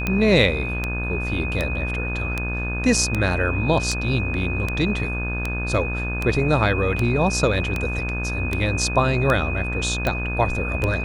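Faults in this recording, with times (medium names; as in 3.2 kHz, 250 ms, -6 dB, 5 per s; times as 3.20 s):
buzz 60 Hz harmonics 29 -27 dBFS
tick 78 rpm -9 dBFS
whine 2.5 kHz -28 dBFS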